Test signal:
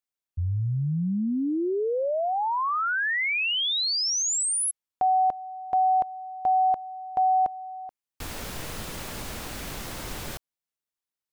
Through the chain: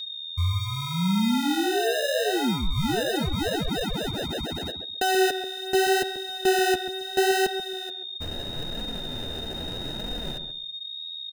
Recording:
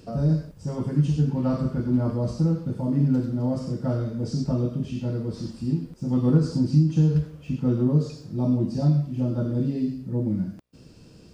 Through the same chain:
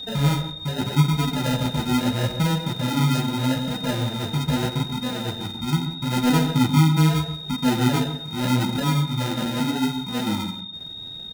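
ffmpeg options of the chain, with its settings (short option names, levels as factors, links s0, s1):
-filter_complex "[0:a]highshelf=f=5300:g=-11,acrusher=samples=39:mix=1:aa=0.000001,aeval=exprs='val(0)+0.02*sin(2*PI*3700*n/s)':c=same,flanger=delay=4:depth=9.2:regen=-4:speed=0.79:shape=sinusoidal,asplit=2[s0][s1];[s1]adelay=135,lowpass=f=1200:p=1,volume=0.398,asplit=2[s2][s3];[s3]adelay=135,lowpass=f=1200:p=1,volume=0.2,asplit=2[s4][s5];[s5]adelay=135,lowpass=f=1200:p=1,volume=0.2[s6];[s0][s2][s4][s6]amix=inputs=4:normalize=0,volume=1.58"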